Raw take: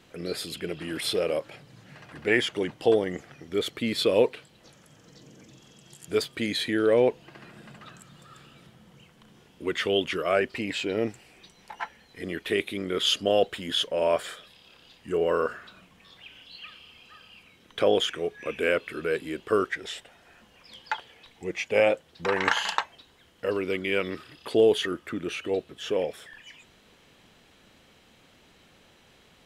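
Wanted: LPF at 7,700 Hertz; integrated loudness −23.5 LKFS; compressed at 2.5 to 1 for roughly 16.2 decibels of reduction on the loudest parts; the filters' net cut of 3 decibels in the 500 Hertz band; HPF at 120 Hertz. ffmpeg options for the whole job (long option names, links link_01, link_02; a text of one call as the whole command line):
ffmpeg -i in.wav -af "highpass=120,lowpass=7700,equalizer=frequency=500:width_type=o:gain=-3.5,acompressor=threshold=-44dB:ratio=2.5,volume=19.5dB" out.wav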